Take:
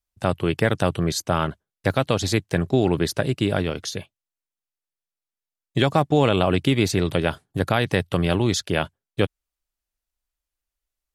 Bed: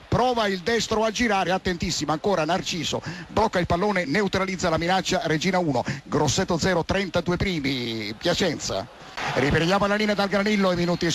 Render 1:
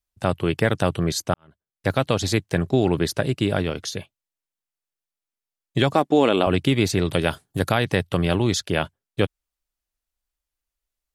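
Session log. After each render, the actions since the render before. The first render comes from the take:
0:01.34–0:01.91: fade in quadratic
0:05.94–0:06.47: low shelf with overshoot 170 Hz −13 dB, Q 1.5
0:07.13–0:07.74: high-shelf EQ 4,600 Hz +8.5 dB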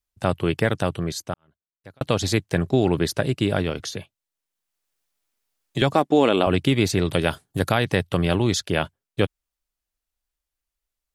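0:00.49–0:02.01: fade out
0:03.79–0:05.82: multiband upward and downward compressor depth 40%
0:08.24–0:08.81: floating-point word with a short mantissa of 8 bits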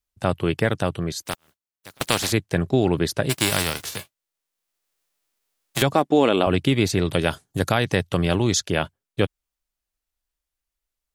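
0:01.21–0:02.31: compressing power law on the bin magnitudes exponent 0.36
0:03.29–0:05.81: spectral envelope flattened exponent 0.3
0:07.19–0:08.71: parametric band 6,400 Hz +6 dB 0.59 octaves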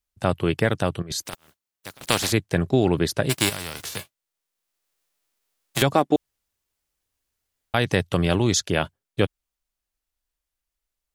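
0:01.02–0:02.06: compressor whose output falls as the input rises −31 dBFS, ratio −0.5
0:03.49–0:03.96: downward compressor 5 to 1, threshold −28 dBFS
0:06.16–0:07.74: fill with room tone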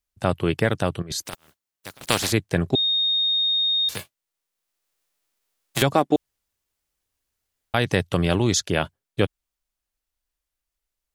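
0:02.75–0:03.89: beep over 3,700 Hz −18.5 dBFS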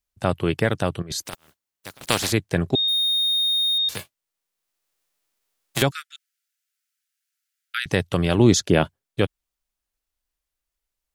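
0:02.88–0:03.78: spike at every zero crossing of −29.5 dBFS
0:05.91–0:07.86: Chebyshev high-pass filter 1,300 Hz, order 8
0:08.38–0:08.84: parametric band 250 Hz +8 dB 2.7 octaves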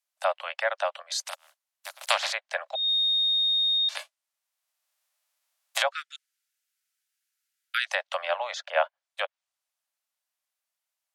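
treble cut that deepens with the level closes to 2,200 Hz, closed at −16.5 dBFS
Butterworth high-pass 560 Hz 96 dB per octave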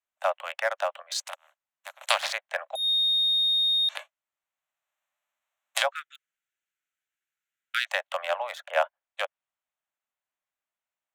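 adaptive Wiener filter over 9 samples
high-shelf EQ 5,800 Hz +5.5 dB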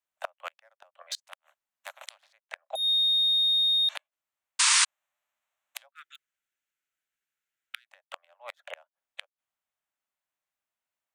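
gate with flip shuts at −20 dBFS, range −35 dB
0:04.59–0:04.85: sound drawn into the spectrogram noise 890–9,700 Hz −21 dBFS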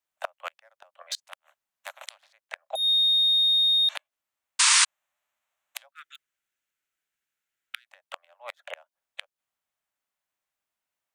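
level +2.5 dB

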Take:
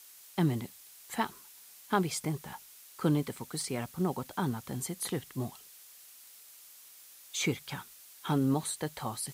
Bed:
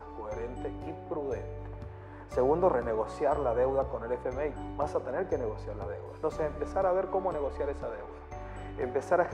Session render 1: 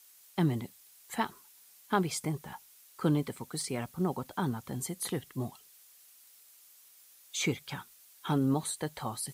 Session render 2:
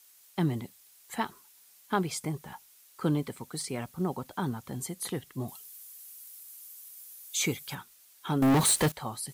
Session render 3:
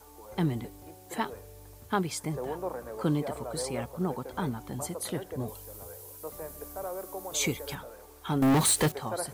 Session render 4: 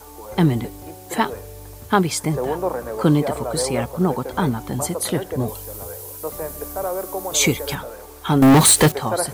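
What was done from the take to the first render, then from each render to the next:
broadband denoise 6 dB, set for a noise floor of −54 dBFS
0:05.48–0:07.75: parametric band 13,000 Hz +12 dB 1.4 octaves; 0:08.42–0:08.92: leveller curve on the samples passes 5
mix in bed −9.5 dB
level +11.5 dB

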